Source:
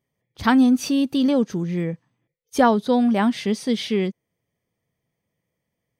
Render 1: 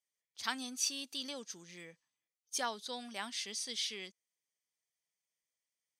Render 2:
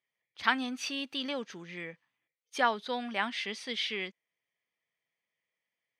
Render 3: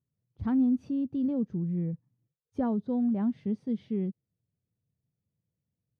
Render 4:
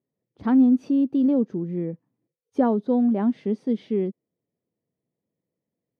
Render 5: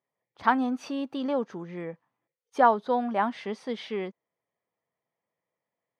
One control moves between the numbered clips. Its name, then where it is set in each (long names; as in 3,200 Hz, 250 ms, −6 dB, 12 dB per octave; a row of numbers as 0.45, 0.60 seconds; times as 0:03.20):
resonant band-pass, frequency: 6,800, 2,400, 100, 310, 960 Hertz